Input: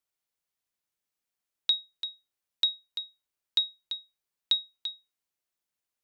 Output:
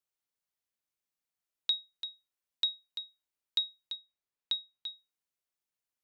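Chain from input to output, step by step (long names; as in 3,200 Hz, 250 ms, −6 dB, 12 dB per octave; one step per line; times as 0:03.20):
0:03.95–0:04.86: high-shelf EQ 6,100 Hz −10 dB
level −4.5 dB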